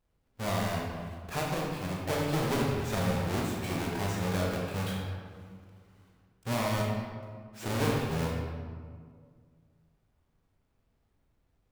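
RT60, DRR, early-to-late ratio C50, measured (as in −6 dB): 1.9 s, −2.5 dB, 0.0 dB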